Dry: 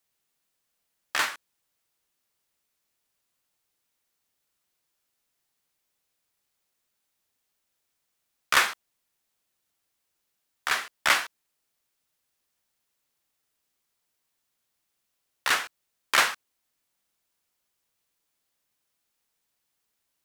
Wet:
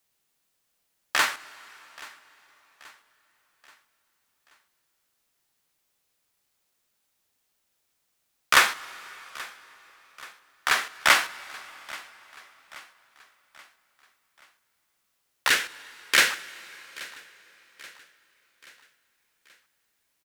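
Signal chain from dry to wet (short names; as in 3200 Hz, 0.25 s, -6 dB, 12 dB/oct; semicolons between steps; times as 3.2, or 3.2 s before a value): 15.49–16.31 band shelf 910 Hz -10.5 dB 1.2 oct; feedback echo 0.83 s, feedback 49%, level -20.5 dB; reverb RT60 4.7 s, pre-delay 4 ms, DRR 17.5 dB; gain +3.5 dB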